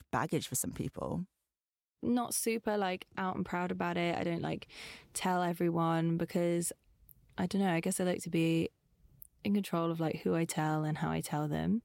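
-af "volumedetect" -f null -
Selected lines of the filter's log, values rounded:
mean_volume: -34.3 dB
max_volume: -19.2 dB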